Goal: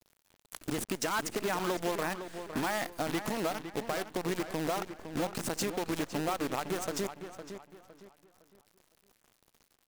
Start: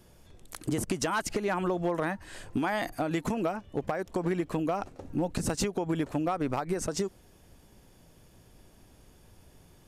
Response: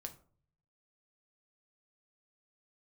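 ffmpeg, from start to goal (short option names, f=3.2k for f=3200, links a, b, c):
-filter_complex "[0:a]highpass=f=230:p=1,acrusher=bits=6:dc=4:mix=0:aa=0.000001,asplit=2[a][b];[b]adelay=509,lowpass=f=3.9k:p=1,volume=-9.5dB,asplit=2[c][d];[d]adelay=509,lowpass=f=3.9k:p=1,volume=0.33,asplit=2[e][f];[f]adelay=509,lowpass=f=3.9k:p=1,volume=0.33,asplit=2[g][h];[h]adelay=509,lowpass=f=3.9k:p=1,volume=0.33[i];[a][c][e][g][i]amix=inputs=5:normalize=0,volume=-2.5dB"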